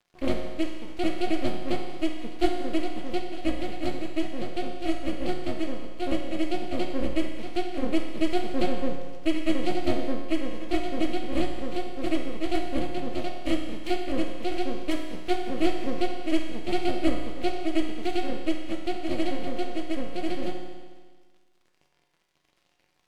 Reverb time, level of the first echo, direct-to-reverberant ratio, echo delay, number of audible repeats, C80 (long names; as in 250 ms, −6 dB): 1.5 s, no echo audible, 1.0 dB, no echo audible, no echo audible, 5.5 dB